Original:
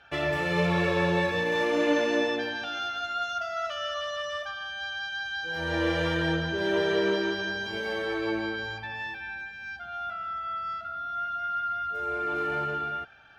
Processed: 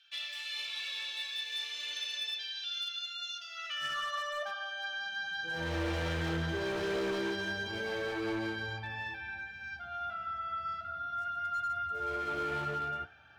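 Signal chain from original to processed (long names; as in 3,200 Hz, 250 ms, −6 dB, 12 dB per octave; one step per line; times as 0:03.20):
high-pass filter sweep 3,600 Hz → 82 Hz, 0:03.41–0:05.77
gain into a clipping stage and back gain 27 dB
flanger 0.35 Hz, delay 7.8 ms, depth 8.2 ms, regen −64%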